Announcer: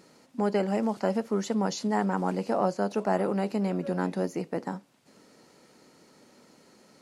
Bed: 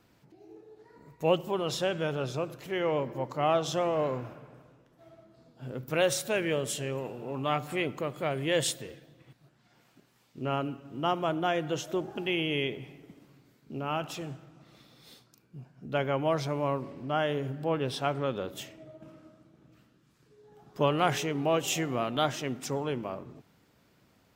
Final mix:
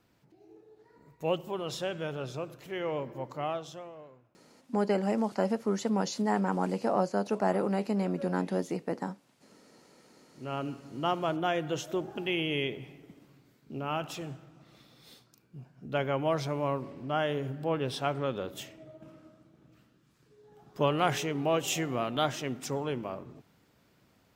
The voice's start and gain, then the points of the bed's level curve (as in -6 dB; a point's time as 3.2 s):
4.35 s, -1.5 dB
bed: 3.37 s -4.5 dB
4.31 s -28 dB
9.65 s -28 dB
10.69 s -1 dB